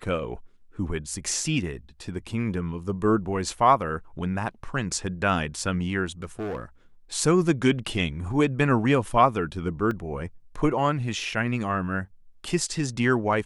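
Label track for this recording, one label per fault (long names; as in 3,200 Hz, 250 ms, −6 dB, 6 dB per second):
6.220000	6.630000	clipping −27.5 dBFS
9.910000	9.910000	drop-out 2.5 ms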